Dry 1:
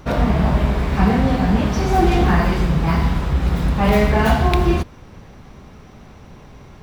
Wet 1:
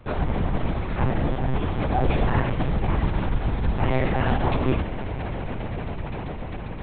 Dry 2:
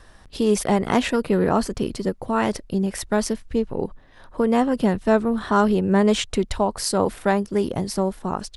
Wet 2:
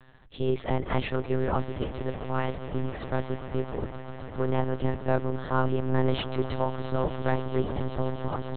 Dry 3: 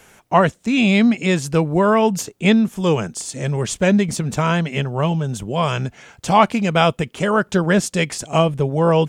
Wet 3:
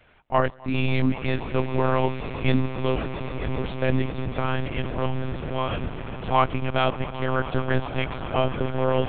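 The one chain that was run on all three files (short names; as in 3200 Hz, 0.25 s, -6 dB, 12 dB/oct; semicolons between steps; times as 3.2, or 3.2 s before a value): swelling echo 0.133 s, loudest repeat 8, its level -18 dB; monotone LPC vocoder at 8 kHz 130 Hz; gain -7 dB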